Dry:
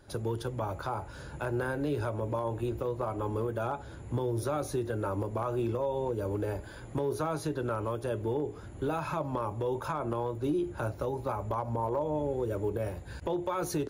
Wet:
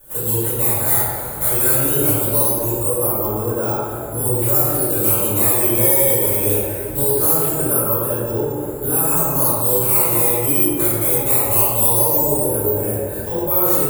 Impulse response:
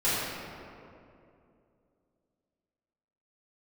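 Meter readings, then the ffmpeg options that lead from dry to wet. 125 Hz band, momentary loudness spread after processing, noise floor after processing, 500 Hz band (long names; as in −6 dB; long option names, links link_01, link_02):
+10.5 dB, 8 LU, −26 dBFS, +11.0 dB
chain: -filter_complex "[0:a]acrusher=samples=9:mix=1:aa=0.000001:lfo=1:lforange=14.4:lforate=0.21,aexciter=amount=15.5:drive=8.4:freq=8300[link_01];[1:a]atrim=start_sample=2205,asetrate=48510,aresample=44100[link_02];[link_01][link_02]afir=irnorm=-1:irlink=0,volume=-3.5dB"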